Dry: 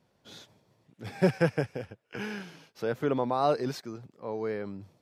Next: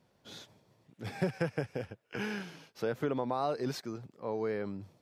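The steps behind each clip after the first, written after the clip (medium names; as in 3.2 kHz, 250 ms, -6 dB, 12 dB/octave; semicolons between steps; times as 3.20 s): compression 6:1, threshold -28 dBFS, peak gain reduction 10.5 dB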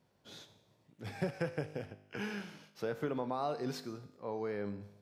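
feedback comb 51 Hz, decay 0.81 s, harmonics all, mix 60%; trim +2.5 dB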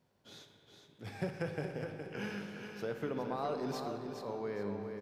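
feedback delay 416 ms, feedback 33%, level -7 dB; spring tank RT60 3.6 s, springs 44/59 ms, chirp 35 ms, DRR 6.5 dB; trim -2 dB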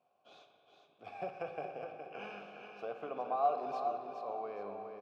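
vowel filter a; trim +11 dB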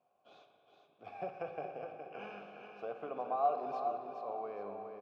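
treble shelf 3.2 kHz -8 dB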